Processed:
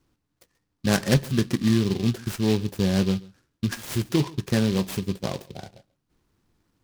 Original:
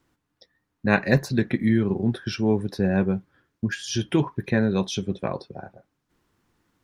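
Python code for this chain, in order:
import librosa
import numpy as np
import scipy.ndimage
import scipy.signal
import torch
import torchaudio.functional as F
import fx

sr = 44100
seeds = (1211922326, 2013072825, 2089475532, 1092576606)

p1 = fx.low_shelf(x, sr, hz=98.0, db=7.0)
p2 = fx.sample_hold(p1, sr, seeds[0], rate_hz=1400.0, jitter_pct=0)
p3 = p1 + (p2 * 10.0 ** (-11.0 / 20.0))
p4 = p3 + 10.0 ** (-22.5 / 20.0) * np.pad(p3, (int(137 * sr / 1000.0), 0))[:len(p3)]
p5 = fx.noise_mod_delay(p4, sr, seeds[1], noise_hz=3400.0, depth_ms=0.088)
y = p5 * 10.0 ** (-3.5 / 20.0)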